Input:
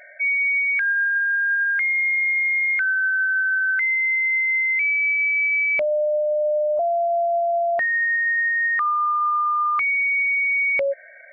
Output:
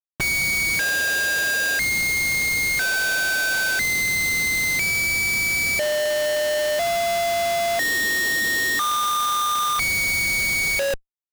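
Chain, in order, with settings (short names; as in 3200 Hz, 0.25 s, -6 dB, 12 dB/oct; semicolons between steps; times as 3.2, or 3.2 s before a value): notch 2200 Hz, Q 10; in parallel at -8.5 dB: sample-rate reducer 2200 Hz, jitter 20%; on the sum: Schmitt trigger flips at -33.5 dBFS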